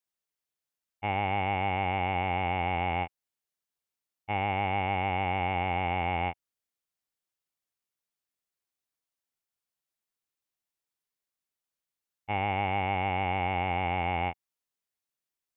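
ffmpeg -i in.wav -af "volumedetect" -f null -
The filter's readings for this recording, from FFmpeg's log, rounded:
mean_volume: -33.3 dB
max_volume: -17.0 dB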